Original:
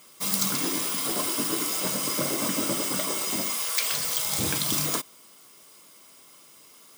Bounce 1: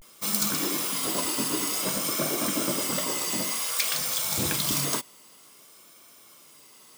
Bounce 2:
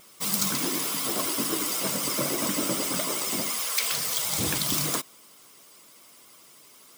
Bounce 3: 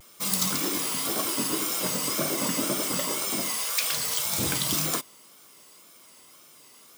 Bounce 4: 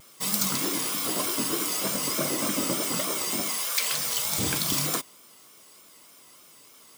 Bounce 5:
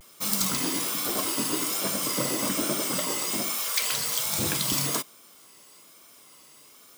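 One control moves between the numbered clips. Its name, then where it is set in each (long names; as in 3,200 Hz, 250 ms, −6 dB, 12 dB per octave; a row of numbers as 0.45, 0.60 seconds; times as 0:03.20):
pitch vibrato, speed: 0.54, 12, 1.9, 3.3, 1.2 Hertz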